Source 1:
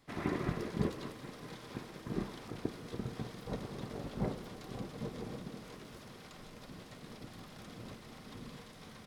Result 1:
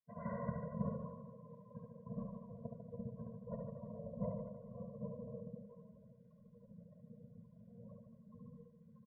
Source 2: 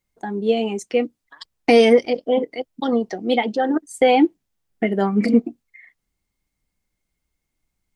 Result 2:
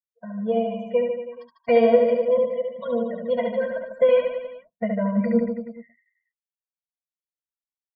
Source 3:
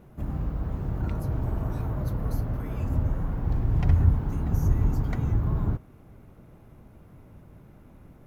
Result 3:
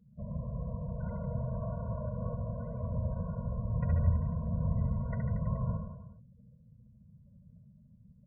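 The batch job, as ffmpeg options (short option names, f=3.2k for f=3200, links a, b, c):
-af "lowpass=1.3k,aemphasis=mode=production:type=75fm,aeval=exprs='0.631*(cos(1*acos(clip(val(0)/0.631,-1,1)))-cos(1*PI/2))+0.0251*(cos(4*acos(clip(val(0)/0.631,-1,1)))-cos(4*PI/2))':c=same,afftdn=nr=33:nf=-44,highpass=f=220:p=1,aecho=1:1:70|147|231.7|324.9|427.4:0.631|0.398|0.251|0.158|0.1,afftfilt=real='re*eq(mod(floor(b*sr/1024/230),2),0)':imag='im*eq(mod(floor(b*sr/1024/230),2),0)':win_size=1024:overlap=0.75"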